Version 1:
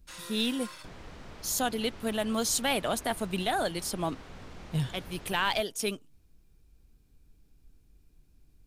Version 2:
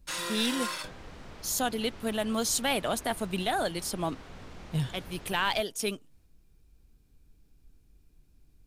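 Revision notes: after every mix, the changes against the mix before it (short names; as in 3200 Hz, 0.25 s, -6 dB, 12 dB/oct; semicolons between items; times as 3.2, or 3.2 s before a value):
first sound +11.0 dB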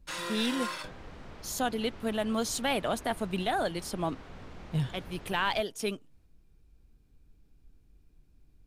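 master: add high shelf 4300 Hz -8 dB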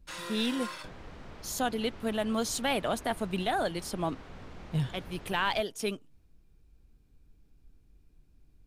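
first sound -4.0 dB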